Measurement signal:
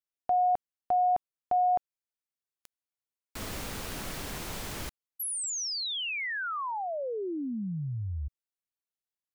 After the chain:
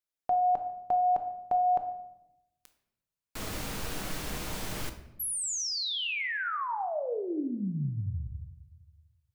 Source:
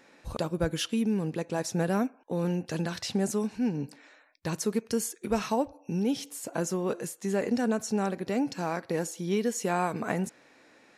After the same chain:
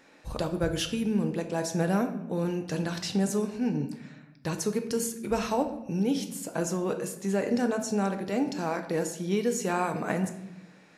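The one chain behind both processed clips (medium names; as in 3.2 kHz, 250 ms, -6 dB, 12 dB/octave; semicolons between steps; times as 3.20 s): simulated room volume 270 m³, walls mixed, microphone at 0.53 m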